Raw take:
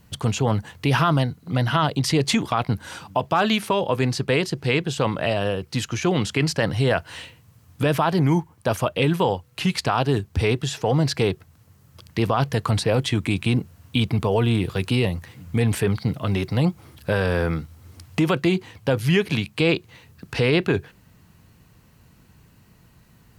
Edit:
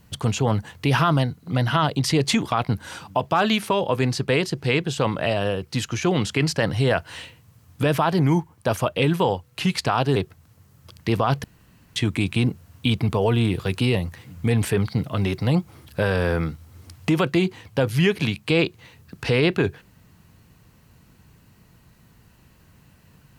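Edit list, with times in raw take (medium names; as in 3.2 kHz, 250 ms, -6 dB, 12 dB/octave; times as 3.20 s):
10.16–11.26 s: delete
12.54–13.06 s: room tone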